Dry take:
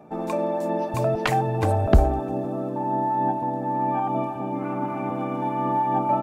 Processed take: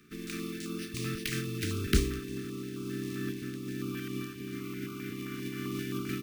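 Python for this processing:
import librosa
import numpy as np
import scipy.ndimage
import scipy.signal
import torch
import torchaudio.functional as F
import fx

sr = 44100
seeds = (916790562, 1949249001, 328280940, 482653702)

y = fx.spec_flatten(x, sr, power=0.51)
y = scipy.signal.sosfilt(scipy.signal.cheby1(4, 1.0, [420.0, 1200.0], 'bandstop', fs=sr, output='sos'), y)
y = np.repeat(scipy.signal.resample_poly(y, 1, 3), 3)[:len(y)]
y = fx.filter_held_notch(y, sr, hz=7.6, low_hz=850.0, high_hz=1800.0)
y = y * 10.0 ** (-7.5 / 20.0)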